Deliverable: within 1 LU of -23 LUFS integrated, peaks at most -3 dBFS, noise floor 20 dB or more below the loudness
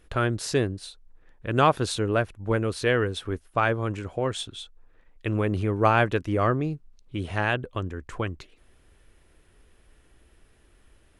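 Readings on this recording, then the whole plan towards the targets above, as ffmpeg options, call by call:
loudness -26.5 LUFS; peak level -7.0 dBFS; loudness target -23.0 LUFS
-> -af "volume=1.5"

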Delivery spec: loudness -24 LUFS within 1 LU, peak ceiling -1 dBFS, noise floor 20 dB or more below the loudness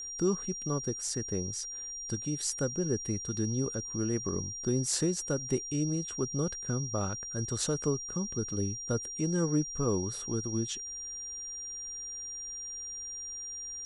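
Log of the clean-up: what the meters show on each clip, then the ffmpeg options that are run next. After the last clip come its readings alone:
steady tone 5.7 kHz; tone level -38 dBFS; loudness -33.0 LUFS; peak level -14.0 dBFS; loudness target -24.0 LUFS
-> -af "bandreject=f=5700:w=30"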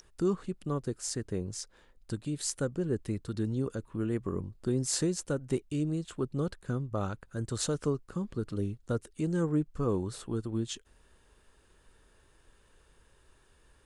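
steady tone not found; loudness -33.5 LUFS; peak level -14.0 dBFS; loudness target -24.0 LUFS
-> -af "volume=2.99"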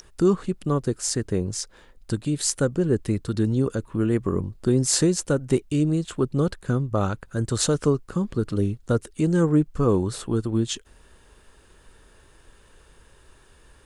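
loudness -24.0 LUFS; peak level -4.5 dBFS; noise floor -55 dBFS

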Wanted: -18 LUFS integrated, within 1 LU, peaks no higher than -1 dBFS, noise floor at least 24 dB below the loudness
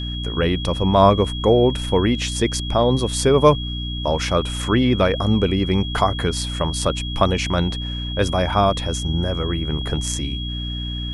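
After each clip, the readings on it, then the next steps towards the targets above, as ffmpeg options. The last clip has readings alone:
hum 60 Hz; highest harmonic 300 Hz; hum level -25 dBFS; steady tone 3.3 kHz; tone level -30 dBFS; loudness -20.0 LUFS; peak level -1.0 dBFS; loudness target -18.0 LUFS
-> -af "bandreject=f=60:t=h:w=4,bandreject=f=120:t=h:w=4,bandreject=f=180:t=h:w=4,bandreject=f=240:t=h:w=4,bandreject=f=300:t=h:w=4"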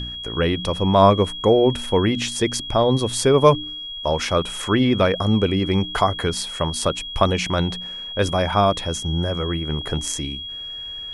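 hum not found; steady tone 3.3 kHz; tone level -30 dBFS
-> -af "bandreject=f=3300:w=30"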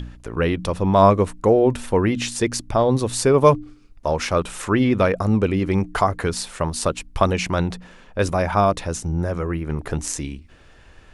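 steady tone not found; loudness -20.5 LUFS; peak level -1.5 dBFS; loudness target -18.0 LUFS
-> -af "volume=1.33,alimiter=limit=0.891:level=0:latency=1"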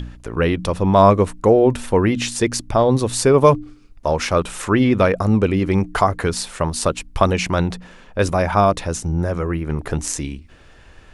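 loudness -18.5 LUFS; peak level -1.0 dBFS; noise floor -46 dBFS

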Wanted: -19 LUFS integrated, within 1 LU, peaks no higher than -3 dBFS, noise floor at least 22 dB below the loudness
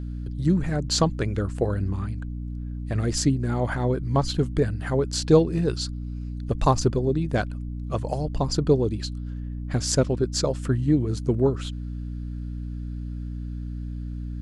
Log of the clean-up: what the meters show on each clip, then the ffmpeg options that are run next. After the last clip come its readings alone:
hum 60 Hz; highest harmonic 300 Hz; hum level -29 dBFS; loudness -26.0 LUFS; peak level -5.5 dBFS; loudness target -19.0 LUFS
-> -af "bandreject=f=60:t=h:w=6,bandreject=f=120:t=h:w=6,bandreject=f=180:t=h:w=6,bandreject=f=240:t=h:w=6,bandreject=f=300:t=h:w=6"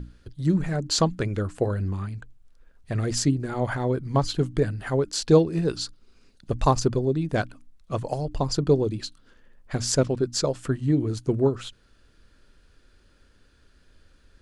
hum not found; loudness -25.5 LUFS; peak level -5.5 dBFS; loudness target -19.0 LUFS
-> -af "volume=2.11,alimiter=limit=0.708:level=0:latency=1"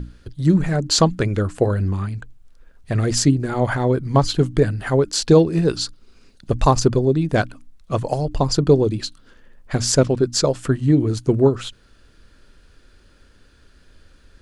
loudness -19.5 LUFS; peak level -3.0 dBFS; noise floor -53 dBFS

